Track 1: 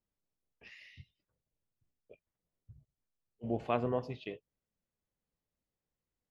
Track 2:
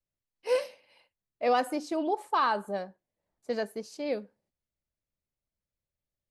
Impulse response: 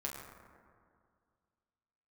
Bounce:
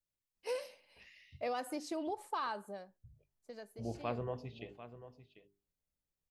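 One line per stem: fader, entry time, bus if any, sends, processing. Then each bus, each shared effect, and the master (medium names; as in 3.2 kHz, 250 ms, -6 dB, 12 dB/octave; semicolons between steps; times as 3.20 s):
-7.0 dB, 0.35 s, no send, echo send -13.5 dB, bass shelf 95 Hz +11 dB; hum notches 50/100/150/200/250/300/350/400 Hz
2.50 s -5.5 dB -> 2.94 s -15.5 dB, 0.00 s, no send, no echo send, compression 4:1, threshold -30 dBFS, peak gain reduction 8.5 dB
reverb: none
echo: delay 744 ms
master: treble shelf 4.5 kHz +5.5 dB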